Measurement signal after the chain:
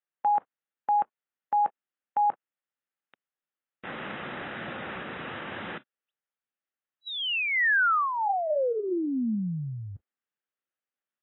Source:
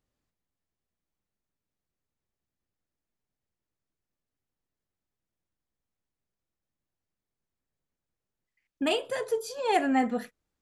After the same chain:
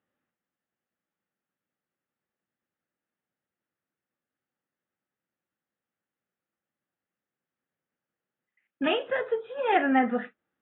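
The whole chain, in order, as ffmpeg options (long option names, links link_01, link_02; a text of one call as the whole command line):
ffmpeg -i in.wav -af "acontrast=51,highpass=280,equalizer=frequency=300:width_type=q:width=4:gain=-5,equalizer=frequency=420:width_type=q:width=4:gain=-8,equalizer=frequency=670:width_type=q:width=4:gain=-7,equalizer=frequency=1000:width_type=q:width=4:gain=-9,equalizer=frequency=2300:width_type=q:width=4:gain=-6,lowpass=frequency=2500:width=0.5412,lowpass=frequency=2500:width=1.3066,volume=2dB" -ar 22050 -c:a aac -b:a 16k out.aac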